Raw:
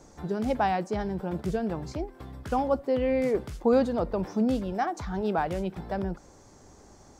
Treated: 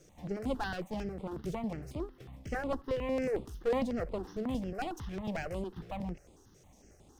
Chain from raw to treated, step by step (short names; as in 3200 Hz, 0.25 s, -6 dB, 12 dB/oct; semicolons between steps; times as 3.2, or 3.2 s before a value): minimum comb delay 0.35 ms; step phaser 11 Hz 240–5800 Hz; gain -4 dB